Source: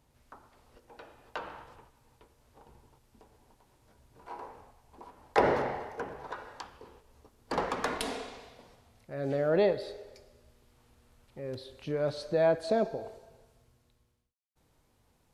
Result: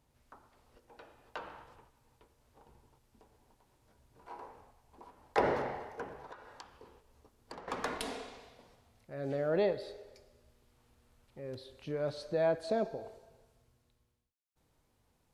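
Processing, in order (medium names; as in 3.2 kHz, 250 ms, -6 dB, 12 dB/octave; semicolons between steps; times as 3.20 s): 6.19–7.68 s: compression 10:1, threshold -41 dBFS, peak gain reduction 15.5 dB; trim -4.5 dB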